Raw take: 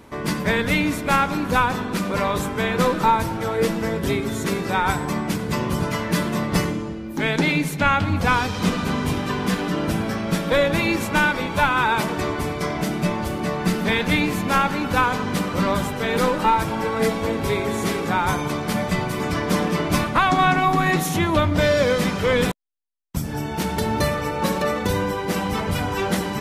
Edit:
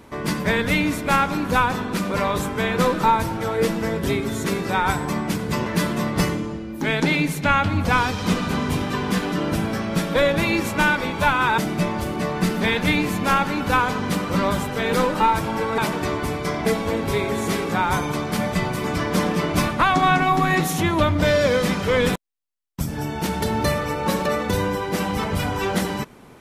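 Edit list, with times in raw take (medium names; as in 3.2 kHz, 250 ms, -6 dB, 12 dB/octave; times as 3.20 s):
5.66–6.02 s: delete
11.94–12.82 s: move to 17.02 s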